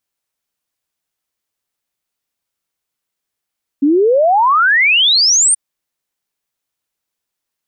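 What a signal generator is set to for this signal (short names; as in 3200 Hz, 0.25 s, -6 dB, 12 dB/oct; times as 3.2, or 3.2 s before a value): log sweep 270 Hz -> 9300 Hz 1.73 s -8 dBFS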